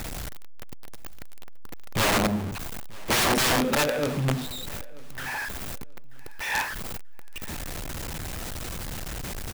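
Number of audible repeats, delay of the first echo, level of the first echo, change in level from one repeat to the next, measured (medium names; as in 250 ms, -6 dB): 2, 935 ms, -22.5 dB, -11.0 dB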